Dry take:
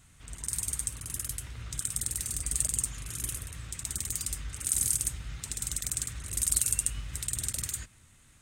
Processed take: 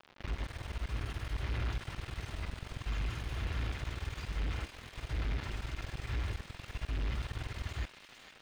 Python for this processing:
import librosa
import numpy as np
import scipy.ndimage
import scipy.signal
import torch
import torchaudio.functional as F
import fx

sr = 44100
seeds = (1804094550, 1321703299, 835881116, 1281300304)

y = fx.peak_eq(x, sr, hz=260.0, db=-6.5, octaves=0.28)
y = y + 0.47 * np.pad(y, (int(2.9 * sr / 1000.0), 0))[:len(y)]
y = fx.over_compress(y, sr, threshold_db=-37.0, ratio=-1.0)
y = fx.quant_companded(y, sr, bits=2)
y = fx.dmg_crackle(y, sr, seeds[0], per_s=160.0, level_db=-36.0)
y = 10.0 ** (-35.5 / 20.0) * np.tanh(y / 10.0 ** (-35.5 / 20.0))
y = fx.air_absorb(y, sr, metres=290.0)
y = fx.echo_wet_highpass(y, sr, ms=457, feedback_pct=65, hz=2200.0, wet_db=-7.0)
y = y * librosa.db_to_amplitude(5.5)